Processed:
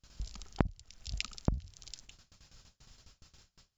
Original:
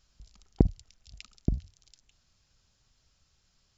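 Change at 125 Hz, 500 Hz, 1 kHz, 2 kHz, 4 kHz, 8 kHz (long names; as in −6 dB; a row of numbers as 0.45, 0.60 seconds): −6.0 dB, −5.5 dB, +6.5 dB, +12.0 dB, +10.5 dB, can't be measured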